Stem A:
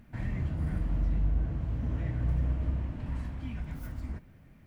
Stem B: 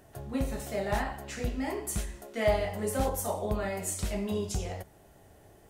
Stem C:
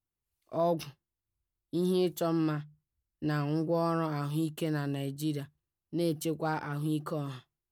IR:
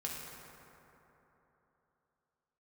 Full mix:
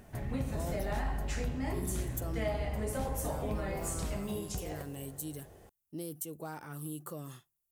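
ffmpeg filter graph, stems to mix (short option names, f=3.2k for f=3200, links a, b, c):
-filter_complex "[0:a]alimiter=level_in=5.5dB:limit=-24dB:level=0:latency=1,volume=-5.5dB,volume=-2dB[a];[1:a]volume=-2dB,asplit=2[b][c];[c]volume=-13dB[d];[2:a]alimiter=limit=-22dB:level=0:latency=1:release=343,aexciter=amount=5.8:drive=5.1:freq=6.3k,volume=-7.5dB[e];[b][e]amix=inputs=2:normalize=0,acompressor=threshold=-36dB:ratio=6,volume=0dB[f];[3:a]atrim=start_sample=2205[g];[d][g]afir=irnorm=-1:irlink=0[h];[a][f][h]amix=inputs=3:normalize=0"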